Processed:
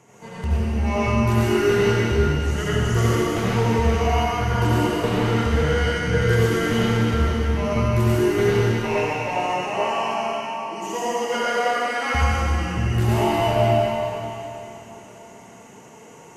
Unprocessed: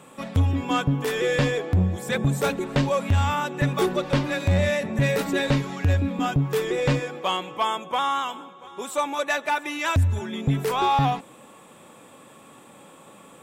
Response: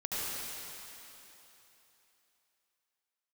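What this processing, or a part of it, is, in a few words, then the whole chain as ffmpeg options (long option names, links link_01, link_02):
slowed and reverbed: -filter_complex "[0:a]asetrate=36162,aresample=44100[link_01];[1:a]atrim=start_sample=2205[link_02];[link_01][link_02]afir=irnorm=-1:irlink=0,volume=-2.5dB"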